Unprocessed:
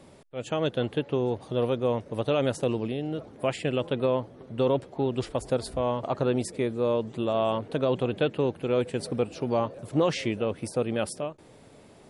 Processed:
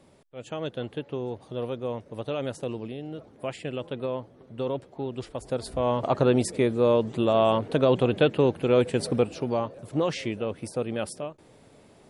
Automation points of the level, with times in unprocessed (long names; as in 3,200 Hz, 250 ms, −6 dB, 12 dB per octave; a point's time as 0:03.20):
0:05.36 −5.5 dB
0:06.03 +4.5 dB
0:09.15 +4.5 dB
0:09.63 −2 dB